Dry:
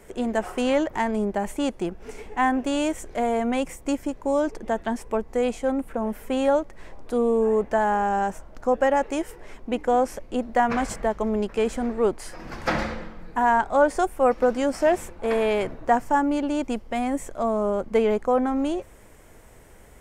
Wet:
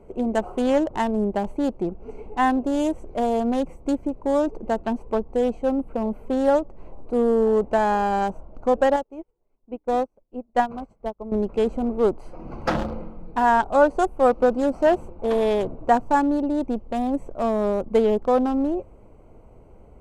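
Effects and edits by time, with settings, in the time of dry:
8.96–11.32 s: upward expansion 2.5:1, over -40 dBFS
whole clip: local Wiener filter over 25 samples; dynamic bell 2.2 kHz, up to -6 dB, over -49 dBFS, Q 2.8; trim +2.5 dB

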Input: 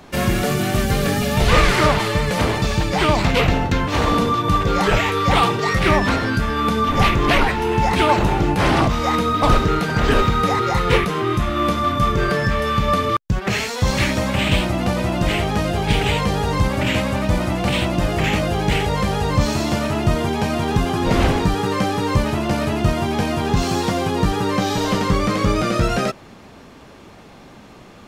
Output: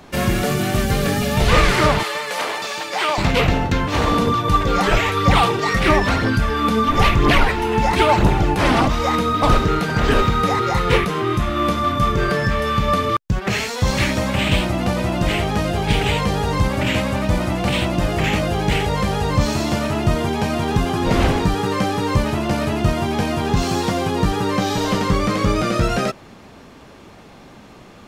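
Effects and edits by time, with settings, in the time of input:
2.03–3.18 s: high-pass 620 Hz
4.27–9.08 s: phaser 1 Hz, delay 4.5 ms, feedback 38%

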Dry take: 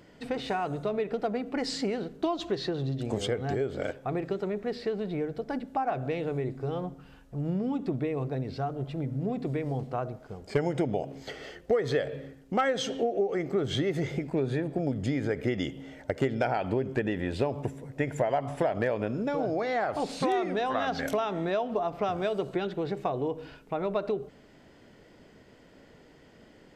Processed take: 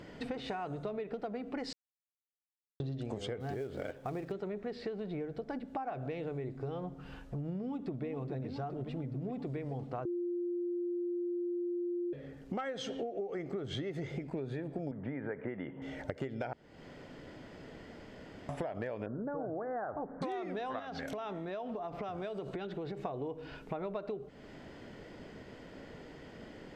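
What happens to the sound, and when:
1.73–2.80 s: mute
3.40–4.32 s: companded quantiser 6-bit
7.59–8.05 s: echo throw 420 ms, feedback 75%, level -8 dB
10.05–12.13 s: bleep 350 Hz -22.5 dBFS
14.91–15.82 s: cabinet simulation 150–2100 Hz, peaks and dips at 310 Hz -4 dB, 980 Hz +9 dB, 1.6 kHz +4 dB
16.53–18.49 s: room tone
19.06–20.22 s: steep low-pass 1.7 kHz 72 dB/octave
20.79–23.05 s: compression 3:1, threshold -34 dBFS
whole clip: treble shelf 7.3 kHz -10.5 dB; compression 4:1, threshold -44 dBFS; trim +5.5 dB

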